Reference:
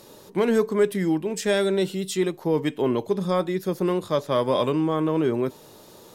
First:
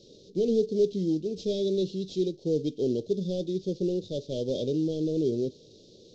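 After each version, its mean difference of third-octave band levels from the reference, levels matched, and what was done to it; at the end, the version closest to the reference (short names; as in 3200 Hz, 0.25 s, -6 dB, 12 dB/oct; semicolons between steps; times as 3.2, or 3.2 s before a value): 9.0 dB: CVSD 32 kbps; Chebyshev band-stop 490–3700 Hz, order 3; gain -3 dB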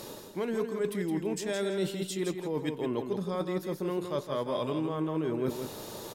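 5.5 dB: reverse; compressor 8:1, threshold -35 dBFS, peak gain reduction 19 dB; reverse; feedback echo 0.165 s, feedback 23%, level -7 dB; gain +5.5 dB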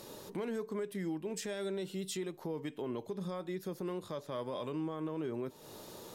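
4.0 dB: compressor 4:1, threshold -35 dBFS, peak gain reduction 16.5 dB; limiter -28 dBFS, peak gain reduction 5 dB; gain -1.5 dB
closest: third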